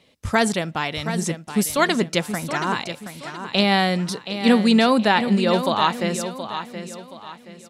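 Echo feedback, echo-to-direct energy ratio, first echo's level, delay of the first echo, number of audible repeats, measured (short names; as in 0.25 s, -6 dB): 36%, -9.5 dB, -10.0 dB, 0.724 s, 3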